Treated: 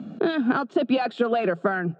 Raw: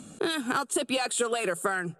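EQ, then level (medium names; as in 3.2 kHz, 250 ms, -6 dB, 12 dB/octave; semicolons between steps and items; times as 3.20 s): distance through air 200 m; cabinet simulation 130–5600 Hz, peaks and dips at 220 Hz +3 dB, 670 Hz +9 dB, 1.5 kHz +3 dB; peaking EQ 210 Hz +10.5 dB 1.9 oct; 0.0 dB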